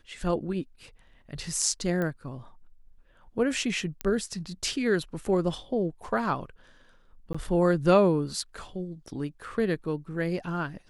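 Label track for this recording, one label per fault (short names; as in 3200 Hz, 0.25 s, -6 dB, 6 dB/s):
2.020000	2.020000	pop -19 dBFS
4.010000	4.010000	pop -15 dBFS
7.330000	7.340000	gap 15 ms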